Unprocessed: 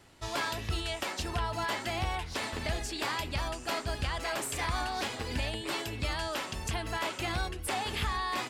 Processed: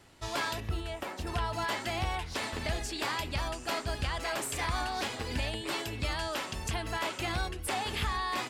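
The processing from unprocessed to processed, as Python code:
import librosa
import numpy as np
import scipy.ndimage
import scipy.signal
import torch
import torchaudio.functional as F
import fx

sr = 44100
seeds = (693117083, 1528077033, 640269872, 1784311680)

y = fx.peak_eq(x, sr, hz=5400.0, db=-11.0, octaves=2.7, at=(0.6, 1.27))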